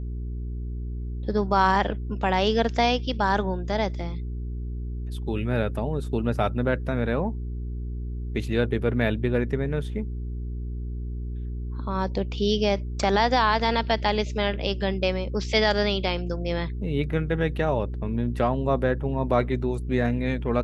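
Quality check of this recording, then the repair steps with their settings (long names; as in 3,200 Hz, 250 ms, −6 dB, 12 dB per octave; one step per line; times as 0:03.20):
mains hum 60 Hz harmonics 7 −31 dBFS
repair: hum removal 60 Hz, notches 7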